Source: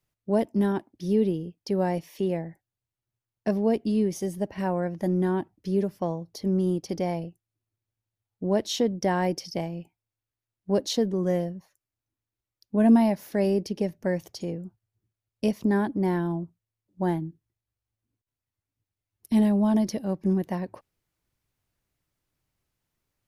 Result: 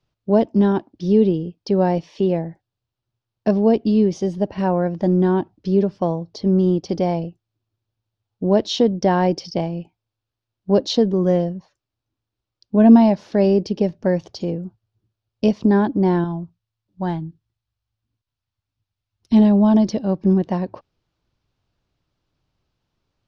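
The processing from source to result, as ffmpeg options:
-filter_complex "[0:a]asettb=1/sr,asplit=3[a][b][c];[a]atrim=end=16.244[d];[b]atrim=start=16.24:end=19.33,asetpts=PTS-STARTPTS,afade=t=in:d=0.004:c=qsin,afade=t=out:st=3.086:d=0.004:c=qsin,equalizer=f=370:w=0.71:g=-9.5[e];[c]atrim=start=19.326[f];[d][e]acrossfade=d=0.004:c1=hsin:c2=qsin[g];[g][f]acrossfade=d=0.004:c1=qsin:c2=hsin,lowpass=f=5.1k:w=0.5412,lowpass=f=5.1k:w=1.3066,equalizer=f=2k:w=2.4:g=-7.5,volume=8dB"

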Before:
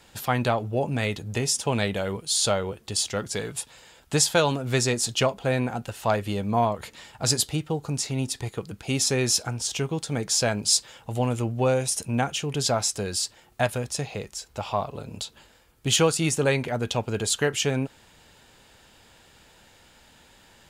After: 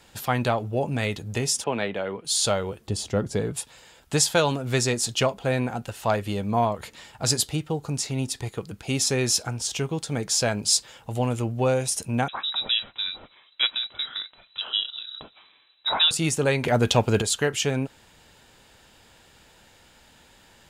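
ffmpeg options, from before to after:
-filter_complex "[0:a]asettb=1/sr,asplit=3[a][b][c];[a]atrim=end=1.644[d];[b]atrim=start=1.64:end=2.25,asetpts=PTS-STARTPTS,afade=t=in:d=0.004:c=qsin,afade=t=out:st=0.606:d=0.004:c=qsin,acrossover=split=200 3500:gain=0.2 1 0.0891[e][f][g];[e][f][g]amix=inputs=3:normalize=0[h];[c]atrim=start=2.246[i];[d][h]acrossfade=d=0.004:c1=hsin:c2=qsin[j];[j][i]acrossfade=d=0.004:c1=qsin:c2=hsin,asettb=1/sr,asplit=3[k][l][m];[k]atrim=end=2.874[n];[l]atrim=start=2.87:end=3.54,asetpts=PTS-STARTPTS,afade=t=in:d=0.004:c=qsin,afade=t=out:st=0.666:d=0.004:c=qsin,tiltshelf=f=970:g=7.5[o];[m]atrim=start=3.536[p];[n][o]acrossfade=d=0.004:c1=hsin:c2=qsin[q];[q][p]acrossfade=d=0.004:c1=qsin:c2=hsin,asettb=1/sr,asplit=3[r][s][t];[r]atrim=end=12.284[u];[s]atrim=start=12.28:end=16.11,asetpts=PTS-STARTPTS,afade=t=in:d=0.004:c=qsin,afade=t=out:st=3.826:d=0.004:c=qsin,lowpass=f=3.4k:t=q:w=0.5098,lowpass=f=3.4k:t=q:w=0.6013,lowpass=f=3.4k:t=q:w=0.9,lowpass=f=3.4k:t=q:w=2.563,afreqshift=-4000[v];[t]atrim=start=16.106[w];[u][v]acrossfade=d=0.004:c1=hsin:c2=qsin[x];[x][w]acrossfade=d=0.004:c1=qsin:c2=hsin,asettb=1/sr,asplit=3[y][z][aa];[y]atrim=end=16.634[ab];[z]atrim=start=16.63:end=17.22,asetpts=PTS-STARTPTS,afade=t=in:d=0.004:c=qsin,afade=t=out:st=0.586:d=0.004:c=qsin,acontrast=84[ac];[aa]atrim=start=17.216[ad];[ab][ac]acrossfade=d=0.004:c1=hsin:c2=qsin[ae];[ae][ad]acrossfade=d=0.004:c1=qsin:c2=hsin"

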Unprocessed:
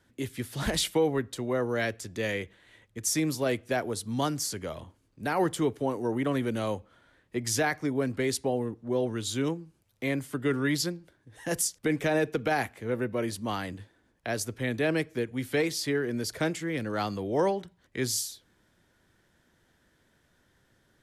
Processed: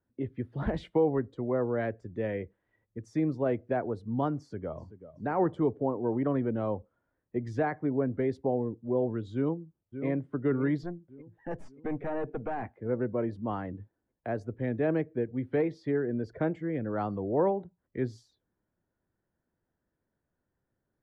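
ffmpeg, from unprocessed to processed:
-filter_complex "[0:a]asplit=2[a][b];[b]afade=t=in:st=4.37:d=0.01,afade=t=out:st=4.82:d=0.01,aecho=0:1:380|760|1140|1520|1900:0.251189|0.125594|0.0627972|0.0313986|0.0156993[c];[a][c]amix=inputs=2:normalize=0,asplit=2[d][e];[e]afade=t=in:st=9.34:d=0.01,afade=t=out:st=10.05:d=0.01,aecho=0:1:580|1160|1740|2320|2900|3480|4060:0.334965|0.200979|0.120588|0.0723525|0.0434115|0.0260469|0.0156281[f];[d][f]amix=inputs=2:normalize=0,asettb=1/sr,asplit=3[g][h][i];[g]atrim=end=10.834[j];[h]atrim=start=10.83:end=12.63,asetpts=PTS-STARTPTS,afade=t=in:d=0.004:c=qsin,afade=t=out:st=1.796:d=0.004:c=qsin,aeval=exprs='(tanh(25.1*val(0)+0.55)-tanh(0.55))/25.1':c=same[k];[i]atrim=start=12.626[l];[j][k]acrossfade=d=0.004:c1=hsin:c2=qsin[m];[m][l]acrossfade=d=0.004:c1=qsin:c2=hsin,afftdn=nr=14:nf=-44,lowpass=1.1k"

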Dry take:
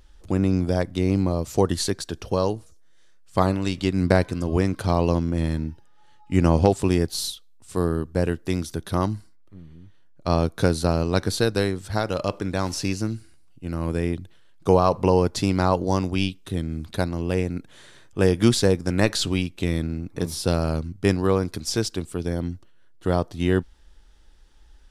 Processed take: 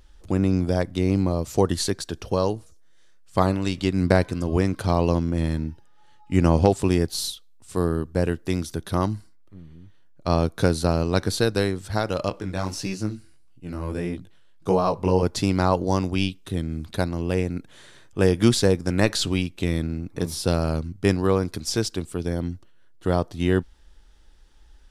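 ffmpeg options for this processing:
-filter_complex "[0:a]asettb=1/sr,asplit=3[a][b][c];[a]atrim=end=12.294[d];[b]atrim=start=12.29:end=15.23,asetpts=PTS-STARTPTS,afade=t=in:d=0.004:c=qsin,afade=t=out:st=2.936:d=0.004:c=qsin,flanger=delay=15.5:depth=6.8:speed=1.6[e];[c]atrim=start=15.226[f];[d][e]acrossfade=d=0.004:c1=hsin:c2=qsin[g];[g][f]acrossfade=d=0.004:c1=qsin:c2=hsin"

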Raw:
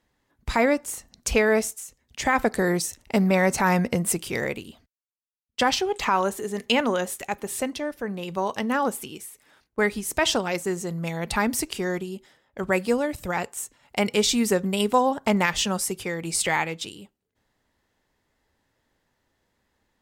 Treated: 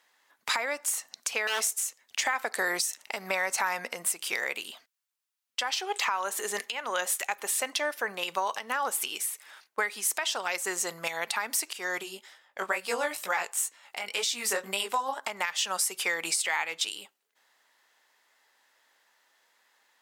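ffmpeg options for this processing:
-filter_complex "[0:a]asettb=1/sr,asplit=3[a][b][c];[a]atrim=end=1.474[d];[b]atrim=start=1.47:end=2.25,asetpts=PTS-STARTPTS,afade=t=in:d=0.004:c=qsin,afade=t=out:st=0.776:d=0.004:c=qsin,aeval=exprs='0.1*(abs(mod(val(0)/0.1+3,4)-2)-1)':c=same[e];[c]atrim=start=2.246[f];[d][e]acrossfade=d=0.004:c1=hsin:c2=qsin[g];[g][f]acrossfade=d=0.004:c1=qsin:c2=hsin,asplit=3[h][i][j];[h]afade=t=out:st=12.02:d=0.02[k];[i]flanger=delay=15:depth=5.9:speed=2.1,afade=t=in:st=12.02:d=0.02,afade=t=out:st=15.22:d=0.02[l];[j]afade=t=in:st=15.22:d=0.02[m];[k][l][m]amix=inputs=3:normalize=0,highpass=930,acompressor=threshold=-33dB:ratio=6,alimiter=level_in=0.5dB:limit=-24dB:level=0:latency=1:release=288,volume=-0.5dB,volume=9dB"

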